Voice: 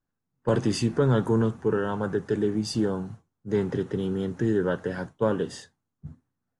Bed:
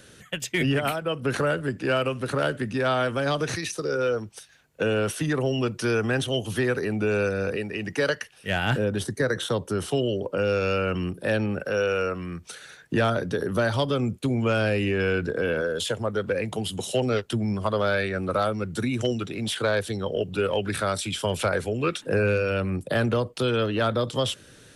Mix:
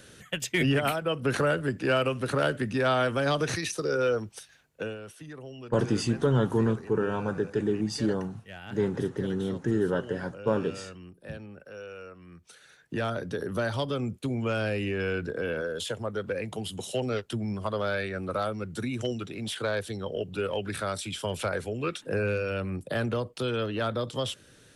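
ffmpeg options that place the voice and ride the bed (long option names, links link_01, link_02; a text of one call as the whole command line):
ffmpeg -i stem1.wav -i stem2.wav -filter_complex "[0:a]adelay=5250,volume=-2dB[link_01];[1:a]volume=11.5dB,afade=type=out:start_time=4.5:duration=0.48:silence=0.141254,afade=type=in:start_time=12.17:duration=1.21:silence=0.237137[link_02];[link_01][link_02]amix=inputs=2:normalize=0" out.wav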